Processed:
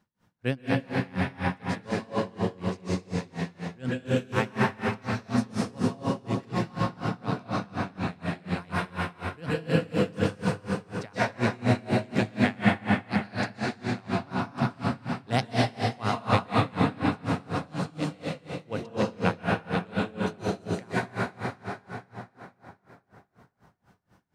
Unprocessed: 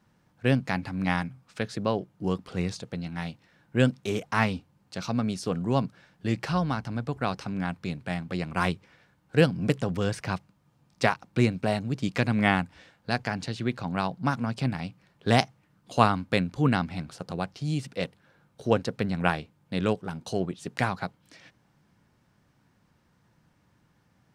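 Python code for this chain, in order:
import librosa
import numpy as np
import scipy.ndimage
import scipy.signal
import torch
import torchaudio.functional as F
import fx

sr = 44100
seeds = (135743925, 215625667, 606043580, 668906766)

y = fx.rev_plate(x, sr, seeds[0], rt60_s=4.5, hf_ratio=0.75, predelay_ms=110, drr_db=-8.0)
y = y * 10.0 ** (-27 * (0.5 - 0.5 * np.cos(2.0 * np.pi * 4.1 * np.arange(len(y)) / sr)) / 20.0)
y = y * 10.0 ** (-3.0 / 20.0)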